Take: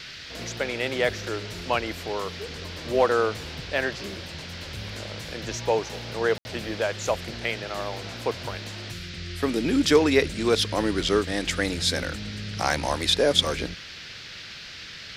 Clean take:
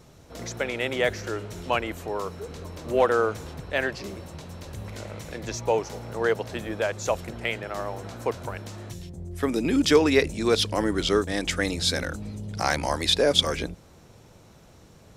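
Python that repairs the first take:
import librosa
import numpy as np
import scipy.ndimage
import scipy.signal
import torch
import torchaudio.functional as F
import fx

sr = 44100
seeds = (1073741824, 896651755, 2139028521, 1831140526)

y = fx.fix_ambience(x, sr, seeds[0], print_start_s=13.79, print_end_s=14.29, start_s=6.38, end_s=6.45)
y = fx.noise_reduce(y, sr, print_start_s=13.79, print_end_s=14.29, reduce_db=10.0)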